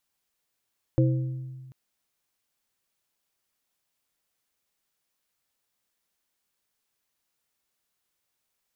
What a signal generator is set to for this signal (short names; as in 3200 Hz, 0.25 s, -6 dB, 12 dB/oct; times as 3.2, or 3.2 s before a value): glass hit plate, length 0.74 s, lowest mode 130 Hz, modes 3, decay 1.65 s, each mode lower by 4 dB, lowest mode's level -17.5 dB